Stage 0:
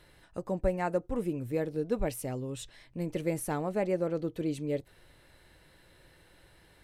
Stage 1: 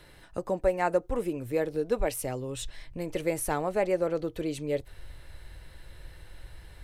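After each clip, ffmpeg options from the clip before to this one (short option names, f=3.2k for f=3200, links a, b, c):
-filter_complex "[0:a]acrossover=split=300|5200[a][b][c];[a]acompressor=threshold=-44dB:ratio=6[d];[d][b][c]amix=inputs=3:normalize=0,asubboost=boost=6:cutoff=87,volume=5.5dB"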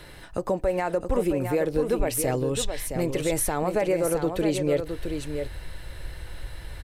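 -af "alimiter=limit=-24dB:level=0:latency=1:release=88,aecho=1:1:666:0.447,volume=8.5dB"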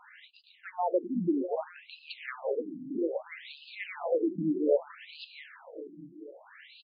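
-af "aecho=1:1:438|876|1314|1752|2190|2628:0.266|0.149|0.0834|0.0467|0.0262|0.0147,afftfilt=real='re*between(b*sr/1024,230*pow(3600/230,0.5+0.5*sin(2*PI*0.62*pts/sr))/1.41,230*pow(3600/230,0.5+0.5*sin(2*PI*0.62*pts/sr))*1.41)':imag='im*between(b*sr/1024,230*pow(3600/230,0.5+0.5*sin(2*PI*0.62*pts/sr))/1.41,230*pow(3600/230,0.5+0.5*sin(2*PI*0.62*pts/sr))*1.41)':win_size=1024:overlap=0.75"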